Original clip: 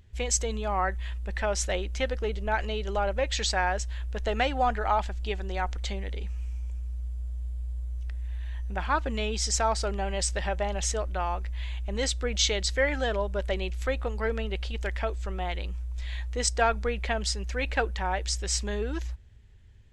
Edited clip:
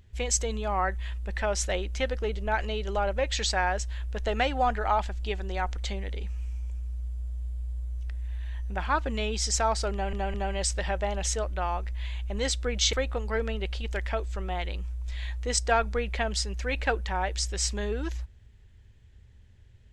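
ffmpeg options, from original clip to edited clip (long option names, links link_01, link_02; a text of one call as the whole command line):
ffmpeg -i in.wav -filter_complex "[0:a]asplit=4[link_01][link_02][link_03][link_04];[link_01]atrim=end=10.132[link_05];[link_02]atrim=start=9.918:end=10.132[link_06];[link_03]atrim=start=9.918:end=12.512[link_07];[link_04]atrim=start=13.828[link_08];[link_05][link_06]acrossfade=duration=0.004:curve1=hsin:curve2=hsin[link_09];[link_09][link_07]acrossfade=duration=0.004:curve1=hsin:curve2=hsin[link_10];[link_10][link_08]acrossfade=duration=0.004:curve1=hsin:curve2=hsin" out.wav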